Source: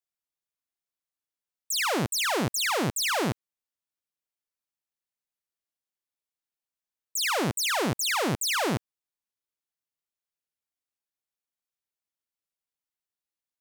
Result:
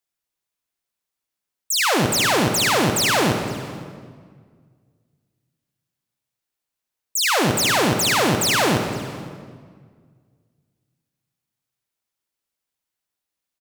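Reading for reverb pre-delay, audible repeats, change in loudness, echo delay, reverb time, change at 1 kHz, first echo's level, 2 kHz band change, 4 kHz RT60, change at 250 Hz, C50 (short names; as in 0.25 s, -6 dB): 38 ms, 1, +8.0 dB, 0.514 s, 1.8 s, +8.5 dB, -22.5 dB, +8.0 dB, 1.4 s, +9.0 dB, 5.0 dB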